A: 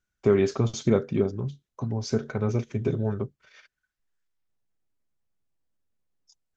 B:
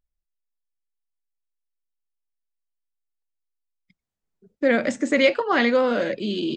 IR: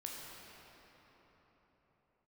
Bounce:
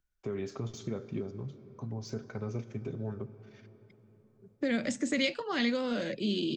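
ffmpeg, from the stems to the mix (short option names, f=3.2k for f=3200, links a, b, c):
-filter_complex "[0:a]deesser=0.8,alimiter=limit=-16dB:level=0:latency=1:release=145,volume=-10.5dB,asplit=2[a][b];[b]volume=-10dB[c];[1:a]volume=-2dB[d];[2:a]atrim=start_sample=2205[e];[c][e]afir=irnorm=-1:irlink=0[f];[a][d][f]amix=inputs=3:normalize=0,acrossover=split=230|3000[g][h][i];[h]acompressor=threshold=-34dB:ratio=6[j];[g][j][i]amix=inputs=3:normalize=0"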